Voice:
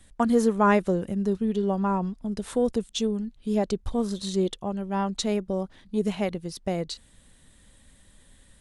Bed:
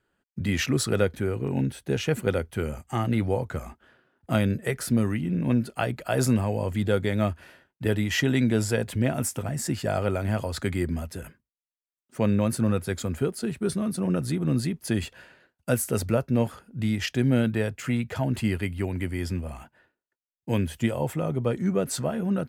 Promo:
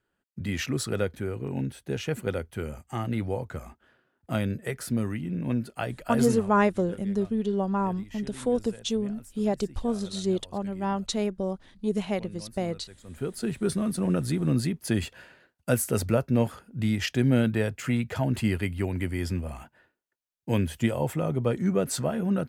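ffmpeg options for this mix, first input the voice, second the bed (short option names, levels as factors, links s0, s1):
-filter_complex "[0:a]adelay=5900,volume=0.841[s0];[1:a]volume=7.08,afade=t=out:st=6.23:d=0.29:silence=0.141254,afade=t=in:st=13.04:d=0.44:silence=0.0841395[s1];[s0][s1]amix=inputs=2:normalize=0"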